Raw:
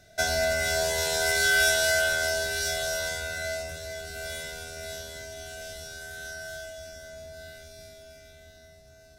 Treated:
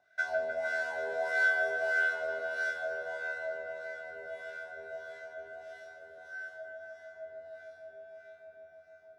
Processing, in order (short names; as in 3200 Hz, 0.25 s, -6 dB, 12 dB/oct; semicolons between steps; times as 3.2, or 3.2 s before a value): wah 1.6 Hz 460–1600 Hz, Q 4.1; dark delay 0.152 s, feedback 82%, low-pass 2400 Hz, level -6 dB